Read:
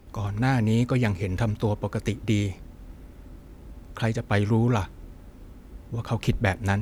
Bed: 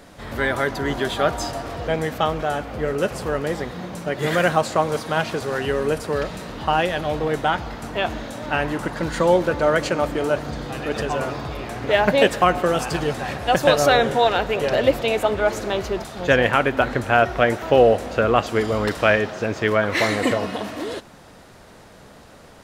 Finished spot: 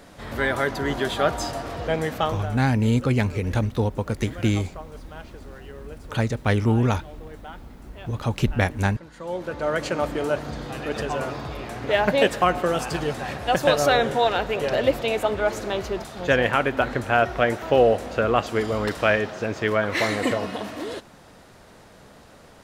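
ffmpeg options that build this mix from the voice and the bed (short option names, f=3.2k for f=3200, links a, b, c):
-filter_complex "[0:a]adelay=2150,volume=2dB[a];[1:a]volume=15.5dB,afade=t=out:st=2.17:d=0.41:silence=0.11885,afade=t=in:st=9.18:d=0.82:silence=0.141254[b];[a][b]amix=inputs=2:normalize=0"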